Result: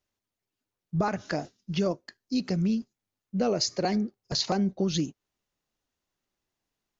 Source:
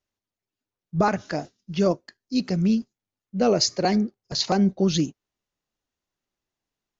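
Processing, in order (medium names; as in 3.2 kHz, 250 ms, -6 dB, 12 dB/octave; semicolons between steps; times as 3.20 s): compression 2.5:1, threshold -28 dBFS, peak gain reduction 8.5 dB; trim +1.5 dB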